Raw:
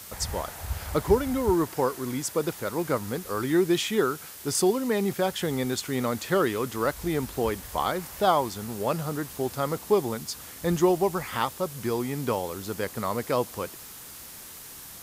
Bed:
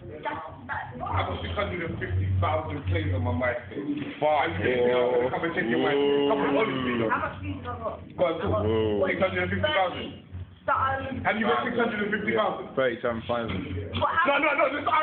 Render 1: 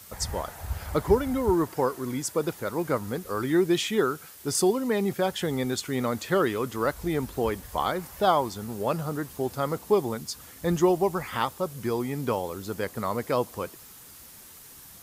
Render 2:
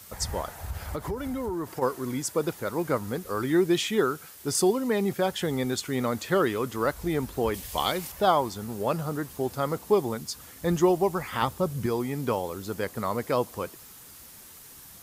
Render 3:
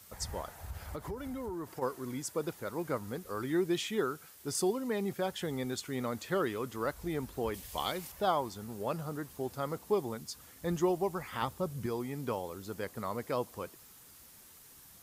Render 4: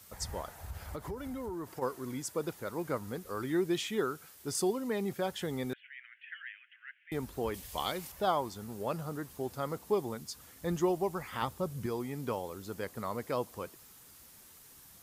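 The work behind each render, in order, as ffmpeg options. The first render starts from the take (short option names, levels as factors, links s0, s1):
-af "afftdn=nr=6:nf=-44"
-filter_complex "[0:a]asplit=3[s0][s1][s2];[s0]afade=t=out:st=0.62:d=0.02[s3];[s1]acompressor=threshold=0.0398:ratio=6:attack=3.2:release=140:knee=1:detection=peak,afade=t=in:st=0.62:d=0.02,afade=t=out:st=1.81:d=0.02[s4];[s2]afade=t=in:st=1.81:d=0.02[s5];[s3][s4][s5]amix=inputs=3:normalize=0,asettb=1/sr,asplit=3[s6][s7][s8];[s6]atrim=end=7.544[s9];[s7]atrim=start=7.54:end=8.12,asetpts=PTS-STARTPTS,afade=t=in:d=0.004:c=qsin,afade=t=out:st=0.576:d=0.004:c=qsin,highshelf=f=2000:t=q:w=1.5:g=7[s10];[s8]atrim=start=8.116[s11];[s9][s10]acrossfade=d=0.004:c1=hsin:c2=qsin[s12];[s12][s11]acrossfade=d=0.004:c1=qsin:c2=hsin,asettb=1/sr,asplit=3[s13][s14][s15];[s13]atrim=end=11.424[s16];[s14]atrim=start=11.42:end=11.86,asetpts=PTS-STARTPTS,afade=t=in:d=0.004:c=qsin,afade=t=out:st=0.436:d=0.004:c=qsin,lowshelf=f=240:g=10.5[s17];[s15]atrim=start=11.856[s18];[s16][s17]acrossfade=d=0.004:c1=hsin:c2=qsin[s19];[s19][s18]acrossfade=d=0.004:c1=qsin:c2=hsin"
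-af "volume=0.398"
-filter_complex "[0:a]asettb=1/sr,asplit=3[s0][s1][s2];[s0]atrim=end=5.734[s3];[s1]atrim=start=5.73:end=7.12,asetpts=PTS-STARTPTS,afade=t=in:d=0.004:c=qsin,afade=t=out:st=1.386:d=0.004:c=qsin,asuperpass=centerf=2200:order=12:qfactor=1.5[s4];[s2]atrim=start=7.116[s5];[s3][s4]acrossfade=d=0.004:c1=hsin:c2=qsin[s6];[s6][s5]acrossfade=d=0.004:c1=qsin:c2=hsin"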